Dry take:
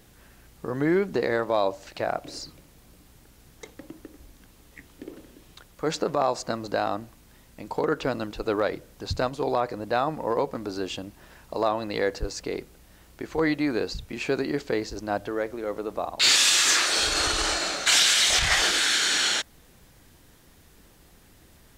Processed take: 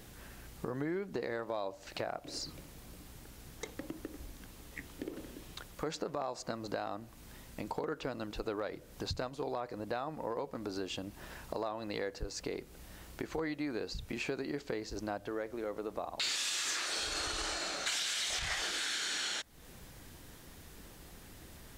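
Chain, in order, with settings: compressor 4:1, threshold -39 dBFS, peak gain reduction 18.5 dB; gain +2 dB

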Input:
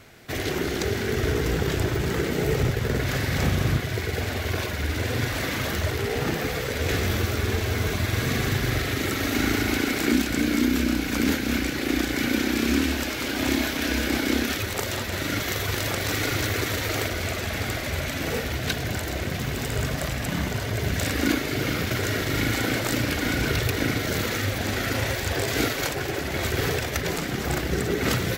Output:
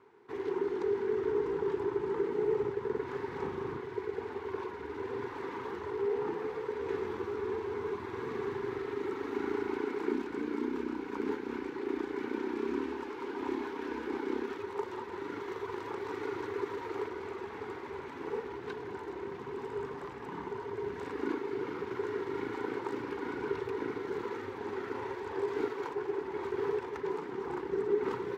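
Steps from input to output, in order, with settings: double band-pass 620 Hz, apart 1.2 oct; gain +1 dB

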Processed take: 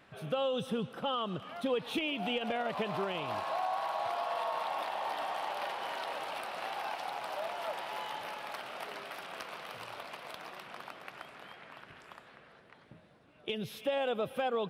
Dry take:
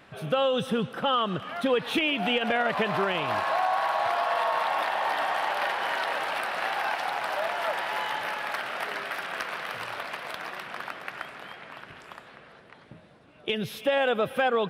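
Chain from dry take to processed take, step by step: dynamic EQ 1700 Hz, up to -8 dB, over -45 dBFS, Q 1.8; gain -7 dB

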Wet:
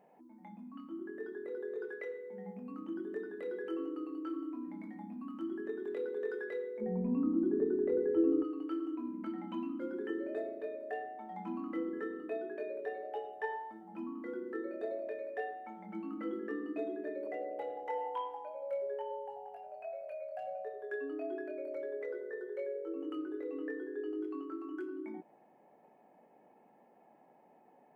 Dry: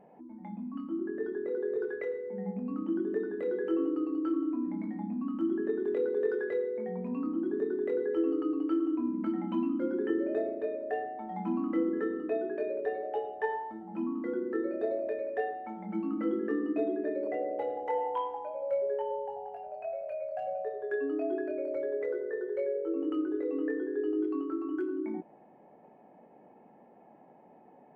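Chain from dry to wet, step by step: tilt +2.5 dB/oct, from 6.8 s -3.5 dB/oct, from 8.43 s +2 dB/oct; gain -5 dB

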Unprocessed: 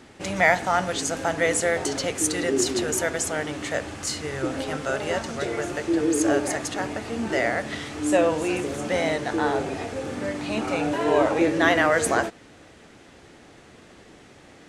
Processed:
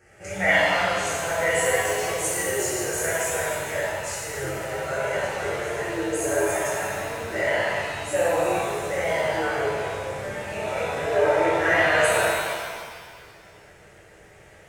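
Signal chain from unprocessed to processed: fixed phaser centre 1000 Hz, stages 6; shimmer reverb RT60 1.8 s, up +7 st, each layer -8 dB, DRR -10 dB; gain -8 dB

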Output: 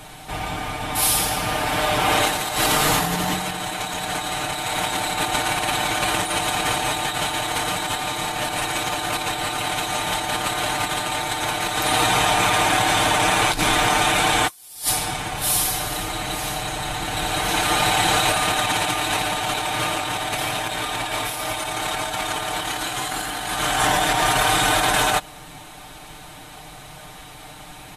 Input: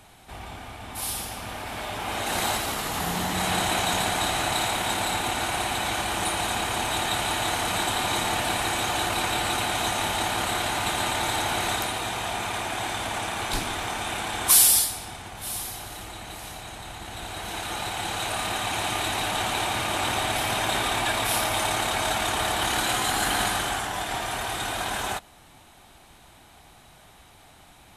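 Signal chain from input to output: comb 6.6 ms, depth 70%; negative-ratio compressor -28 dBFS, ratio -0.5; gain +6.5 dB

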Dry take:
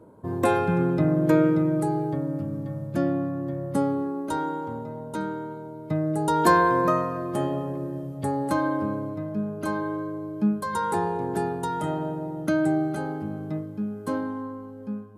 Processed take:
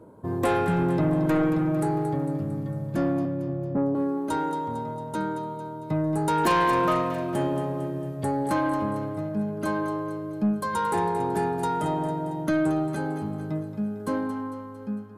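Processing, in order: 3.25–3.95 inverse Chebyshev low-pass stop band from 3100 Hz, stop band 70 dB; soft clip -19 dBFS, distortion -13 dB; thinning echo 0.226 s, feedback 55%, high-pass 420 Hz, level -10 dB; gain +1.5 dB

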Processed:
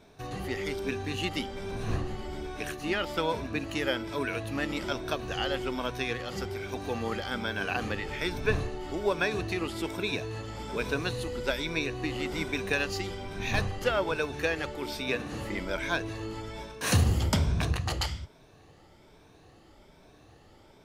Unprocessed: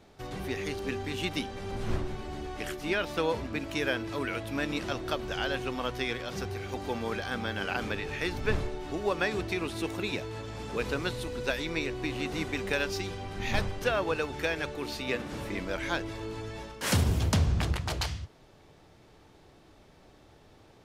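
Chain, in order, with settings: moving spectral ripple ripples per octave 1.6, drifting +1.2 Hz, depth 8 dB

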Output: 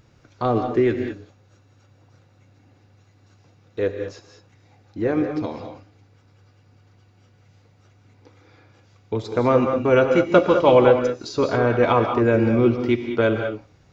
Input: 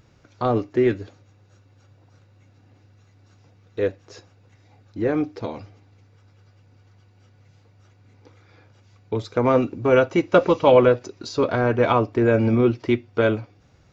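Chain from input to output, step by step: non-linear reverb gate 0.23 s rising, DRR 5.5 dB

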